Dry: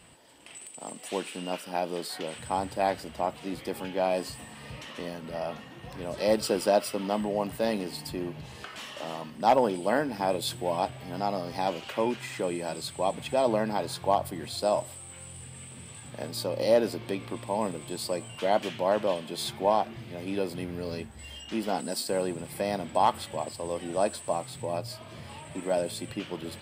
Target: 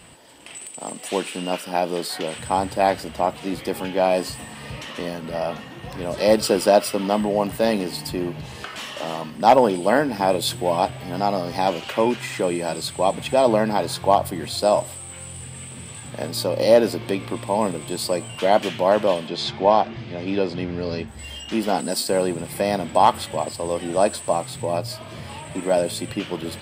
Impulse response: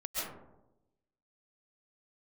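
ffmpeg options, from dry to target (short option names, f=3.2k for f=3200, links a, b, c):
-filter_complex "[0:a]asettb=1/sr,asplit=3[a][b][c];[a]atrim=end=19.274[d];[b]atrim=start=19.27:end=21.08,asetpts=PTS-STARTPTS,afade=t=in:d=0.004:c=qsin,afade=t=out:st=1.806:d=0.004:c=qsin,lowpass=f=6k:w=0.5412,lowpass=f=6k:w=1.3066[e];[c]atrim=start=21.076[f];[d][e]acrossfade=d=0.004:c1=hsin:c2=qsin[g];[g][f]acrossfade=d=0.004:c1=qsin:c2=hsin,volume=8dB"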